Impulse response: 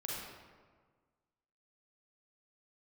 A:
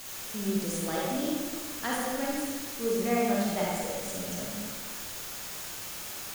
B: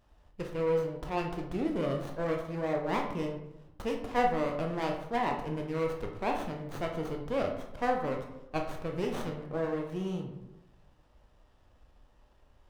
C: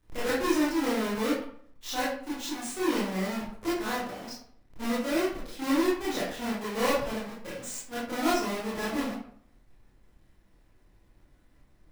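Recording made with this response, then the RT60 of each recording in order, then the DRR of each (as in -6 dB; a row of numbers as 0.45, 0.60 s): A; 1.5, 0.95, 0.60 s; -5.0, 1.5, -9.5 dB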